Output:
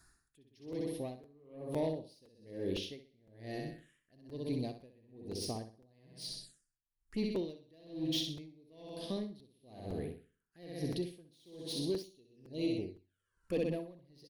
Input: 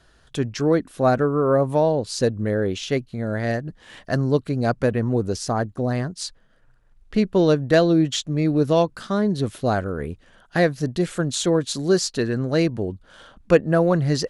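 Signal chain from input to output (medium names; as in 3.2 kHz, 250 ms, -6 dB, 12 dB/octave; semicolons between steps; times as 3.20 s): pre-emphasis filter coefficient 0.8; band-stop 6.1 kHz, Q 19; on a send: feedback delay 63 ms, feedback 59%, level -5.5 dB; on the sum: saturation -25.5 dBFS, distortion -15 dB; 12.02–13.52 s: touch-sensitive flanger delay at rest 2.4 ms, full sweep at -32 dBFS; peaking EQ 320 Hz +5 dB 0.93 oct; in parallel at -3 dB: compression, threshold -46 dBFS, peak gain reduction 19 dB; on the sum: touch-sensitive phaser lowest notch 510 Hz, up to 1.4 kHz, full sweep at -34 dBFS; crackling interface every 0.51 s, samples 256, repeat, from 0.72 s; logarithmic tremolo 1.1 Hz, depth 31 dB; trim -1 dB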